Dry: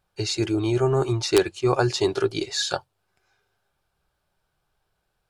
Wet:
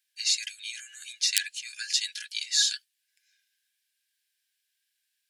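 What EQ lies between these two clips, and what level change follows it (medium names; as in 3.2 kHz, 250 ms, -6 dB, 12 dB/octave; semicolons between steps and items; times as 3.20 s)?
Chebyshev high-pass 1.6 kHz, order 8; treble shelf 2.7 kHz +10 dB; -3.5 dB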